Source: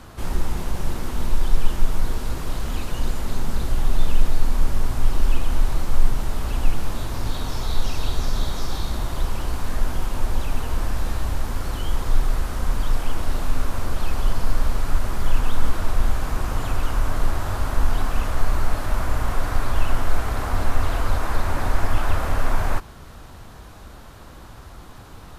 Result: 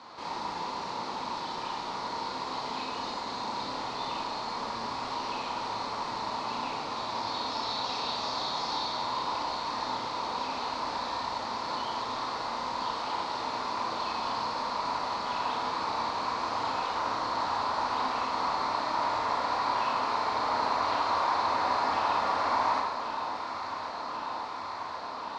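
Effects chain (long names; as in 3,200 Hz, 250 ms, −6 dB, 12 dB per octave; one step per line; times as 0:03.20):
loudspeaker in its box 370–5,300 Hz, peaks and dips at 370 Hz −5 dB, 600 Hz −3 dB, 960 Hz +10 dB, 1,600 Hz −6 dB, 3,000 Hz −5 dB, 4,300 Hz +8 dB
on a send: delay that swaps between a low-pass and a high-pass 544 ms, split 1,100 Hz, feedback 89%, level −9.5 dB
on the sum: four-comb reverb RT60 0.88 s, combs from 27 ms, DRR 0 dB
level −3.5 dB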